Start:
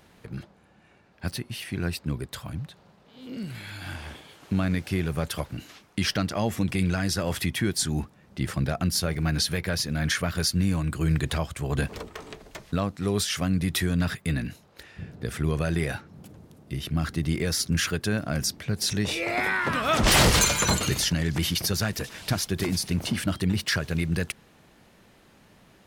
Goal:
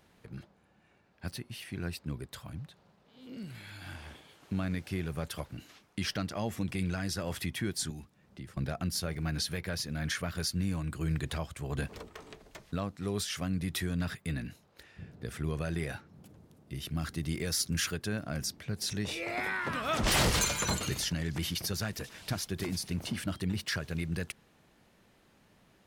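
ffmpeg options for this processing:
ffmpeg -i in.wav -filter_complex "[0:a]asettb=1/sr,asplit=3[link_01][link_02][link_03];[link_01]atrim=end=7.904[link_04];[link_02]atrim=start=7.9:end=8.57,asetpts=PTS-STARTPTS,afade=type=in:duration=0.004:curve=qsin,afade=type=out:start_time=0.666:duration=0.004:curve=qsin,acrossover=split=120|420|2000[link_05][link_06][link_07][link_08];[link_05]acompressor=threshold=-42dB:ratio=4[link_09];[link_06]acompressor=threshold=-38dB:ratio=4[link_10];[link_07]acompressor=threshold=-53dB:ratio=4[link_11];[link_08]acompressor=threshold=-52dB:ratio=4[link_12];[link_09][link_10][link_11][link_12]amix=inputs=4:normalize=0[link_13];[link_03]atrim=start=8.566[link_14];[link_04][link_13]acrossfade=duration=0.004:curve1=hsin:curve2=qsin[link_15];[link_15][link_14]acrossfade=duration=0.004:curve1=qsin:curve2=hsin,asettb=1/sr,asplit=3[link_16][link_17][link_18];[link_16]atrim=end=16.754[link_19];[link_17]atrim=start=16.75:end=17.94,asetpts=PTS-STARTPTS,afade=type=in:duration=0.004:curve=qsin,afade=type=out:start_time=1.186:duration=0.004:curve=qsin,highshelf=frequency=4100:gain=6[link_20];[link_18]atrim=start=17.936[link_21];[link_19][link_20]acrossfade=duration=0.004:curve1=hsin:curve2=qsin[link_22];[link_22][link_21]acrossfade=duration=0.004:curve1=qsin:curve2=hsin,volume=-8dB" out.wav

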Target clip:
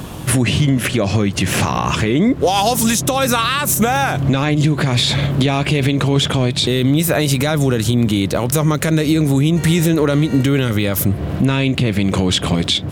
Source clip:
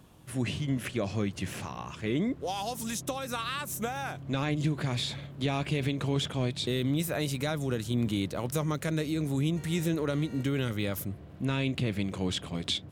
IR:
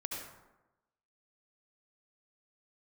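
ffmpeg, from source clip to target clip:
-af "acompressor=threshold=-38dB:ratio=6,alimiter=level_in=31.5dB:limit=-1dB:release=50:level=0:latency=1,volume=-4.5dB"

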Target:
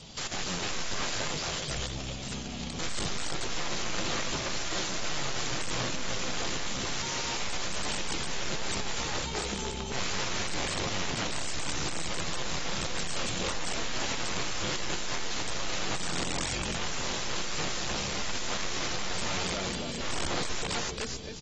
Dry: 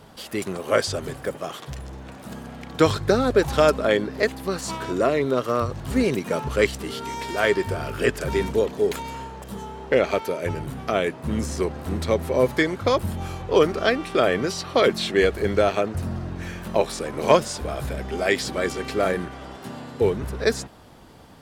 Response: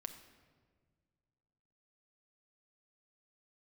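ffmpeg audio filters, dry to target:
-filter_complex "[0:a]bandreject=frequency=67.14:width_type=h:width=4,bandreject=frequency=134.28:width_type=h:width=4,agate=range=-8dB:threshold=-28dB:ratio=16:detection=peak,acrossover=split=2500[link_01][link_02];[link_02]acompressor=threshold=-38dB:ratio=4:attack=1:release=60[link_03];[link_01][link_03]amix=inputs=2:normalize=0,lowshelf=frequency=190:gain=9.5,alimiter=limit=-11dB:level=0:latency=1:release=12,aexciter=amount=4.5:drive=7.9:freq=2300,aecho=1:1:273|546|819|1092:0.422|0.164|0.0641|0.025,aeval=exprs='(tanh(28.2*val(0)+0.7)-tanh(0.7))/28.2':channel_layout=same,aeval=exprs='(mod(29.9*val(0)+1,2)-1)/29.9':channel_layout=same,asplit=2[link_04][link_05];[1:a]atrim=start_sample=2205,afade=type=out:start_time=0.33:duration=0.01,atrim=end_sample=14994[link_06];[link_05][link_06]afir=irnorm=-1:irlink=0,volume=1.5dB[link_07];[link_04][link_07]amix=inputs=2:normalize=0" -ar 32000 -c:a aac -b:a 24k

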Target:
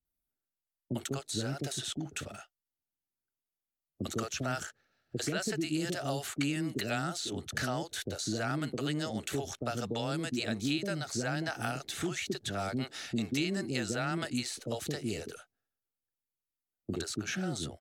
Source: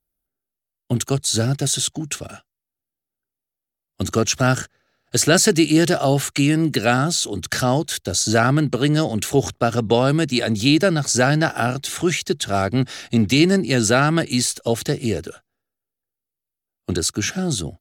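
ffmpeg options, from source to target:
ffmpeg -i in.wav -filter_complex "[0:a]acrossover=split=210|3200[link_01][link_02][link_03];[link_01]acompressor=threshold=-34dB:ratio=4[link_04];[link_02]acompressor=threshold=-24dB:ratio=4[link_05];[link_03]acompressor=threshold=-34dB:ratio=4[link_06];[link_04][link_05][link_06]amix=inputs=3:normalize=0,acrossover=split=480[link_07][link_08];[link_08]adelay=50[link_09];[link_07][link_09]amix=inputs=2:normalize=0,volume=-7.5dB" out.wav

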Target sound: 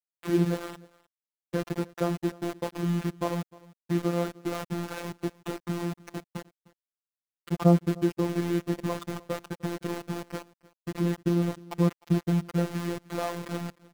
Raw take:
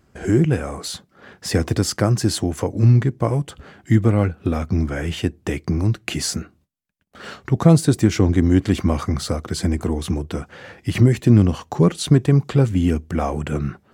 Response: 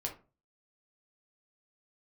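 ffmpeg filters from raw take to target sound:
-filter_complex "[0:a]lowpass=frequency=1500:width=0.5412,lowpass=frequency=1500:width=1.3066,aeval=exprs='val(0)*gte(abs(val(0)),0.075)':channel_layout=same,afftfilt=real='hypot(re,im)*cos(PI*b)':imag='0':win_size=1024:overlap=0.75,lowshelf=frequency=140:gain=-8,asplit=2[link_01][link_02];[link_02]aecho=0:1:305:0.075[link_03];[link_01][link_03]amix=inputs=2:normalize=0,volume=-4dB"

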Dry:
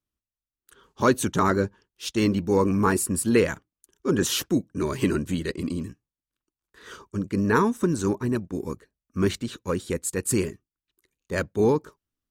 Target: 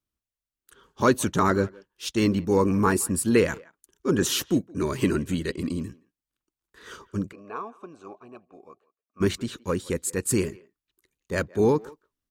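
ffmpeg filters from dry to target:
ffmpeg -i in.wav -filter_complex "[0:a]asplit=3[link_01][link_02][link_03];[link_01]afade=type=out:start_time=7.31:duration=0.02[link_04];[link_02]asplit=3[link_05][link_06][link_07];[link_05]bandpass=frequency=730:width_type=q:width=8,volume=0dB[link_08];[link_06]bandpass=frequency=1090:width_type=q:width=8,volume=-6dB[link_09];[link_07]bandpass=frequency=2440:width_type=q:width=8,volume=-9dB[link_10];[link_08][link_09][link_10]amix=inputs=3:normalize=0,afade=type=in:start_time=7.31:duration=0.02,afade=type=out:start_time=9.2:duration=0.02[link_11];[link_03]afade=type=in:start_time=9.2:duration=0.02[link_12];[link_04][link_11][link_12]amix=inputs=3:normalize=0,asplit=2[link_13][link_14];[link_14]adelay=170,highpass=300,lowpass=3400,asoftclip=type=hard:threshold=-17dB,volume=-22dB[link_15];[link_13][link_15]amix=inputs=2:normalize=0" out.wav

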